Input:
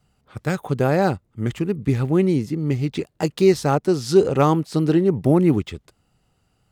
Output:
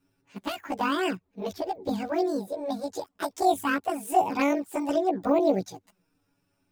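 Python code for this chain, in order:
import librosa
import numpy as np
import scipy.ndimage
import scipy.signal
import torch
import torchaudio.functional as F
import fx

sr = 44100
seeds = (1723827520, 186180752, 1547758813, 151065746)

y = fx.pitch_heads(x, sr, semitones=11.0)
y = fx.env_flanger(y, sr, rest_ms=7.3, full_db=-13.0)
y = y * 10.0 ** (-3.5 / 20.0)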